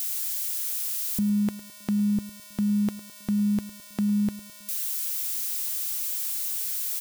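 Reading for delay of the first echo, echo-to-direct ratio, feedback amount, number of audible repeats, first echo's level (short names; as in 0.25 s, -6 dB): 0.106 s, -17.0 dB, 48%, 3, -18.0 dB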